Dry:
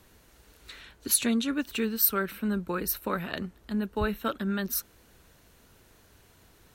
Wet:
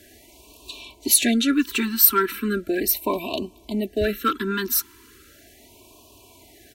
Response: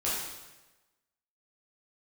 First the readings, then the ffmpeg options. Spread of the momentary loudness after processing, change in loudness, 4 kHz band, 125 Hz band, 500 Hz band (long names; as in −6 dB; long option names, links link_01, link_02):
15 LU, +7.5 dB, +9.0 dB, +1.0 dB, +7.5 dB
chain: -filter_complex "[0:a]highpass=frequency=160:poles=1,aecho=1:1:3:0.79,asplit=2[link_01][link_02];[link_02]asoftclip=type=tanh:threshold=-26.5dB,volume=-5dB[link_03];[link_01][link_03]amix=inputs=2:normalize=0,afftfilt=real='re*(1-between(b*sr/1024,570*pow(1700/570,0.5+0.5*sin(2*PI*0.37*pts/sr))/1.41,570*pow(1700/570,0.5+0.5*sin(2*PI*0.37*pts/sr))*1.41))':imag='im*(1-between(b*sr/1024,570*pow(1700/570,0.5+0.5*sin(2*PI*0.37*pts/sr))/1.41,570*pow(1700/570,0.5+0.5*sin(2*PI*0.37*pts/sr))*1.41))':win_size=1024:overlap=0.75,volume=4.5dB"